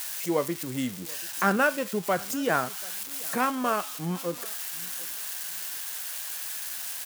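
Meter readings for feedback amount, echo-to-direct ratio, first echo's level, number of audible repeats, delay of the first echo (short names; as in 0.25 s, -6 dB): 27%, -22.5 dB, -23.0 dB, 2, 0.736 s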